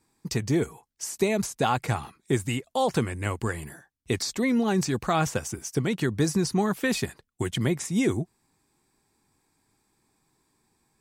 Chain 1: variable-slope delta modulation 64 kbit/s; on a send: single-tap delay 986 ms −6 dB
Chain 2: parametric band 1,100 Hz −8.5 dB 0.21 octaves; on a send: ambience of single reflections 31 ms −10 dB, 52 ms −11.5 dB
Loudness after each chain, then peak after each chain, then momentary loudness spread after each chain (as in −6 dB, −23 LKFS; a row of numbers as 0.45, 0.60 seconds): −27.0, −27.0 LKFS; −11.0, −10.5 dBFS; 8, 8 LU